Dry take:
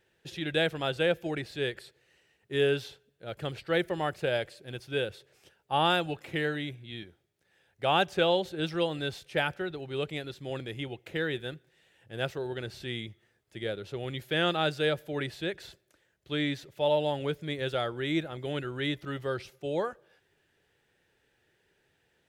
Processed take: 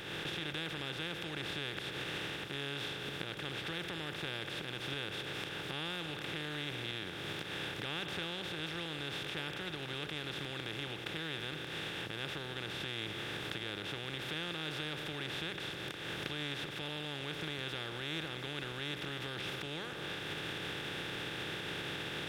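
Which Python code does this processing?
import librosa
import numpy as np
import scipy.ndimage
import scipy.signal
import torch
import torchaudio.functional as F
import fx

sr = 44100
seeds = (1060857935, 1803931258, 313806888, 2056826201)

y = fx.bin_compress(x, sr, power=0.2)
y = fx.recorder_agc(y, sr, target_db=-10.5, rise_db_per_s=48.0, max_gain_db=30)
y = fx.tone_stack(y, sr, knobs='6-0-2')
y = y * 10.0 ** (1.0 / 20.0)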